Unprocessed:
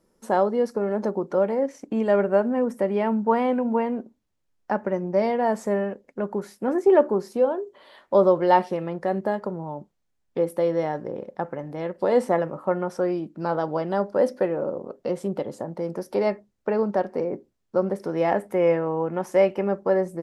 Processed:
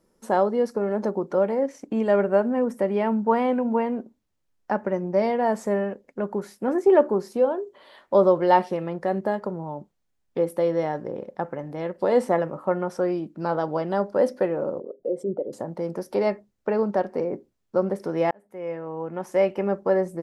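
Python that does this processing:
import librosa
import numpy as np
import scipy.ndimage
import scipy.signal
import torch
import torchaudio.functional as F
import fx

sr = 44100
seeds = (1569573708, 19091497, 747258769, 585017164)

y = fx.envelope_sharpen(x, sr, power=2.0, at=(14.8, 15.53))
y = fx.edit(y, sr, fx.fade_in_span(start_s=18.31, length_s=1.4), tone=tone)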